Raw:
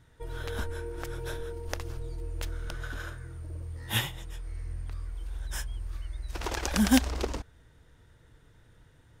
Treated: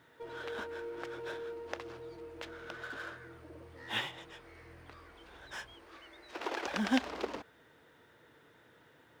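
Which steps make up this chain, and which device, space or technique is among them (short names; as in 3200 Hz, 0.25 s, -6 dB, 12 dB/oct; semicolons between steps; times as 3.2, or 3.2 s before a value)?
phone line with mismatched companding (BPF 300–3400 Hz; G.711 law mismatch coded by mu); 5.74–6.65 resonant low shelf 210 Hz -8.5 dB, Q 1.5; gain -4 dB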